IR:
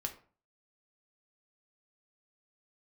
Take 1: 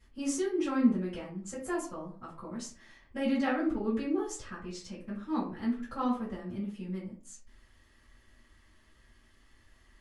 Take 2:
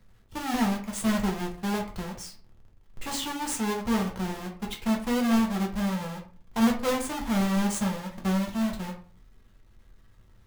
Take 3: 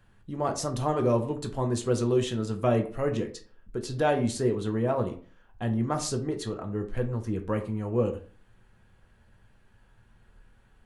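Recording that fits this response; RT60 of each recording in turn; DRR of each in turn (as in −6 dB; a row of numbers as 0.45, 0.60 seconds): 3; 0.40, 0.40, 0.40 seconds; −10.5, −1.0, 3.5 decibels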